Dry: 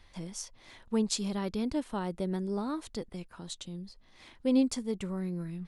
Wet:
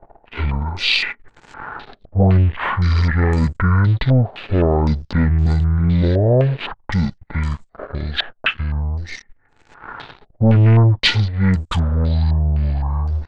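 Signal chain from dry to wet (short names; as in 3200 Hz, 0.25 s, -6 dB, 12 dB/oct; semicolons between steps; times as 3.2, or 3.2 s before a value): speed mistake 78 rpm record played at 33 rpm; sample leveller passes 3; stepped low-pass 3.9 Hz 680–7600 Hz; gain +8 dB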